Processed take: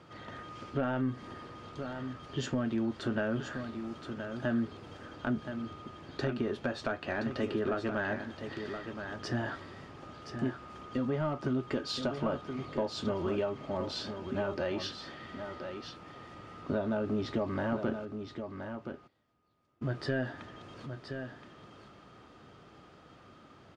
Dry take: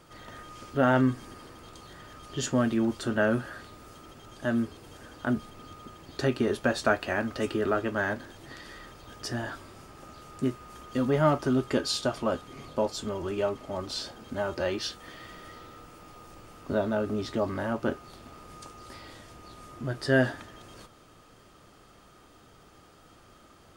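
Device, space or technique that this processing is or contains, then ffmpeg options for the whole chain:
AM radio: -filter_complex "[0:a]highpass=130,lowpass=4000,acompressor=threshold=0.0355:ratio=4,asoftclip=type=tanh:threshold=0.1,tremolo=f=0.23:d=0.15,asplit=3[s0][s1][s2];[s0]afade=t=out:st=18.04:d=0.02[s3];[s1]agate=range=0.0447:threshold=0.00891:ratio=16:detection=peak,afade=t=in:st=18.04:d=0.02,afade=t=out:st=19.83:d=0.02[s4];[s2]afade=t=in:st=19.83:d=0.02[s5];[s3][s4][s5]amix=inputs=3:normalize=0,lowshelf=f=110:g=12,aecho=1:1:1023:0.398"

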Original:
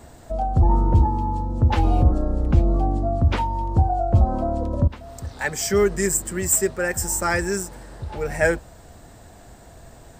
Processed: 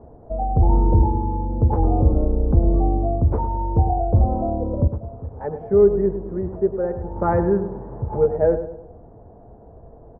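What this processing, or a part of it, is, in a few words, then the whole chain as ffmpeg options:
under water: -filter_complex "[0:a]lowpass=f=910:w=0.5412,lowpass=f=910:w=1.3066,equalizer=f=450:t=o:w=0.28:g=9,asettb=1/sr,asplit=3[s0][s1][s2];[s0]atrim=end=7.164[s3];[s1]atrim=start=7.16:end=8.26,asetpts=PTS-STARTPTS,afade=t=in:d=0.004:c=qsin,afade=t=out:st=1.096:d=0.004:c=qsin,equalizer=f=125:t=o:w=1:g=9,equalizer=f=250:t=o:w=1:g=4,equalizer=f=1000:t=o:w=1:g=7,equalizer=f=2000:t=o:w=1:g=6,equalizer=f=4000:t=o:w=1:g=9[s4];[s2]atrim=start=8.256[s5];[s3][s4]acrossfade=d=0.004:c1=hsin:c2=qsin[s6];[s6][s5]acrossfade=d=0.004:c1=qsin:c2=hsin,asplit=2[s7][s8];[s8]adelay=103,lowpass=f=1700:p=1,volume=0.316,asplit=2[s9][s10];[s10]adelay=103,lowpass=f=1700:p=1,volume=0.45,asplit=2[s11][s12];[s12]adelay=103,lowpass=f=1700:p=1,volume=0.45,asplit=2[s13][s14];[s14]adelay=103,lowpass=f=1700:p=1,volume=0.45,asplit=2[s15][s16];[s16]adelay=103,lowpass=f=1700:p=1,volume=0.45[s17];[s7][s9][s11][s13][s15][s17]amix=inputs=6:normalize=0"

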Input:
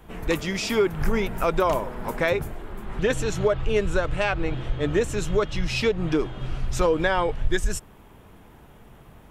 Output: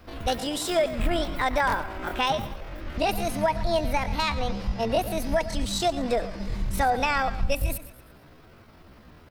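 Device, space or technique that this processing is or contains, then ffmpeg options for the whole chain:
chipmunk voice: -af "aecho=1:1:113|226|339|452:0.2|0.0838|0.0352|0.0148,asetrate=68011,aresample=44100,atempo=0.64842,volume=0.794"

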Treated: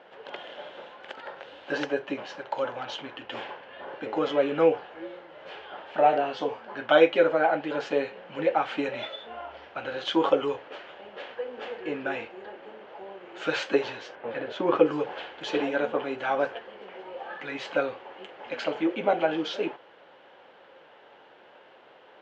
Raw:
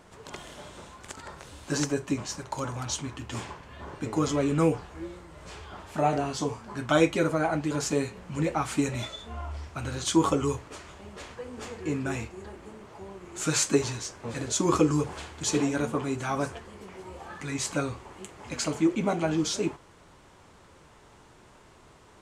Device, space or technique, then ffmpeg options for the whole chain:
phone earpiece: -filter_complex "[0:a]highpass=350,equalizer=f=530:t=q:w=4:g=10,equalizer=f=790:t=q:w=4:g=6,equalizer=f=1100:t=q:w=4:g=-4,equalizer=f=1600:t=q:w=4:g=6,equalizer=f=3000:t=q:w=4:g=7,lowpass=f=3600:w=0.5412,lowpass=f=3600:w=1.3066,asettb=1/sr,asplit=3[s0][s1][s2];[s0]atrim=end=14.154[s3];[s1]atrim=start=14.15:end=14.86,asetpts=PTS-STARTPTS,afade=t=in:d=0.004:c=qsin,afade=t=out:st=0.706:d=0.004:c=qsin,bass=f=250:g=2,treble=f=4000:g=-14[s4];[s2]atrim=start=14.856[s5];[s3][s4]acrossfade=d=0.004:c1=hsin:c2=qsin[s6];[s6][s5]acrossfade=d=0.004:c1=qsin:c2=hsin"

